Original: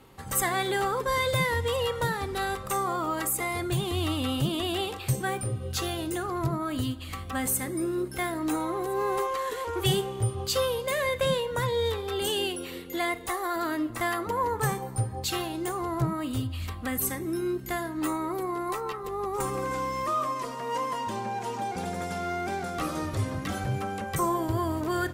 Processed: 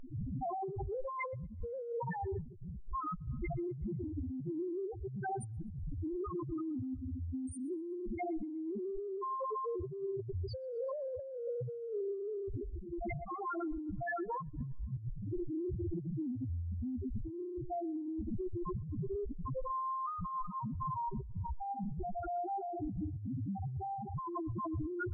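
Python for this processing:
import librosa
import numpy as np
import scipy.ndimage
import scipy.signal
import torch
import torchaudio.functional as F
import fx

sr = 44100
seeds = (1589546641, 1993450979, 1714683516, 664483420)

p1 = fx.dmg_wind(x, sr, seeds[0], corner_hz=290.0, level_db=-27.0)
p2 = fx.rev_gated(p1, sr, seeds[1], gate_ms=310, shape='rising', drr_db=10.5)
p3 = fx.spec_topn(p2, sr, count=1)
p4 = fx.high_shelf(p3, sr, hz=3300.0, db=-9.5)
p5 = p4 + fx.echo_thinned(p4, sr, ms=124, feedback_pct=48, hz=330.0, wet_db=-23.5, dry=0)
y = fx.over_compress(p5, sr, threshold_db=-39.0, ratio=-1.0)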